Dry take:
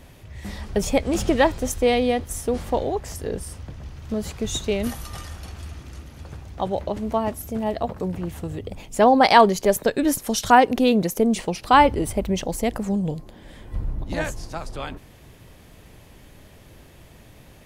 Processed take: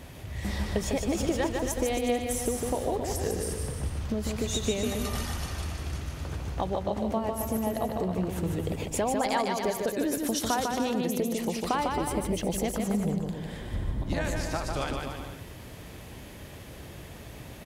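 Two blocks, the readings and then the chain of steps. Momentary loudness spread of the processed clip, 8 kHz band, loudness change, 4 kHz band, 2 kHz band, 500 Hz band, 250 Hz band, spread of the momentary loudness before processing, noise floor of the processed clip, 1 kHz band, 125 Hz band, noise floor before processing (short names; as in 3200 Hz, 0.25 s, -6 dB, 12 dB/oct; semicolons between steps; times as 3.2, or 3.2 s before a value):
16 LU, -2.5 dB, -8.5 dB, -6.0 dB, -9.5 dB, -7.5 dB, -6.0 dB, 21 LU, -45 dBFS, -11.5 dB, -1.5 dB, -48 dBFS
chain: HPF 43 Hz; compressor 6:1, threshold -30 dBFS, peak gain reduction 20 dB; on a send: bouncing-ball echo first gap 0.15 s, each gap 0.8×, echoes 5; on the sum: gain +2.5 dB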